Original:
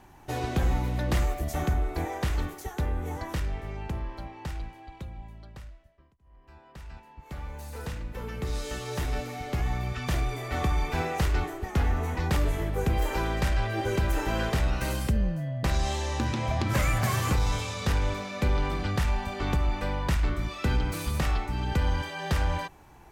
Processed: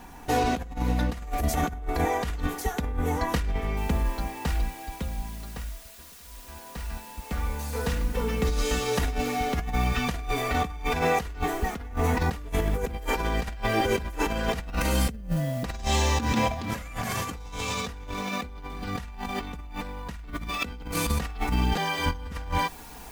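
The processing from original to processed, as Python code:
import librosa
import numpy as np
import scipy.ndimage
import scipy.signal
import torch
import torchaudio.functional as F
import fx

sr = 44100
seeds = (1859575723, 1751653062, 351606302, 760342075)

y = fx.noise_floor_step(x, sr, seeds[0], at_s=3.77, before_db=-70, after_db=-57, tilt_db=0.0)
y = fx.env_flatten(y, sr, amount_pct=70, at=(16.53, 20.96))
y = fx.edit(y, sr, fx.reverse_span(start_s=21.76, length_s=0.56), tone=tone)
y = y + 0.6 * np.pad(y, (int(4.2 * sr / 1000.0), 0))[:len(y)]
y = fx.over_compress(y, sr, threshold_db=-29.0, ratio=-0.5)
y = y * 10.0 ** (2.5 / 20.0)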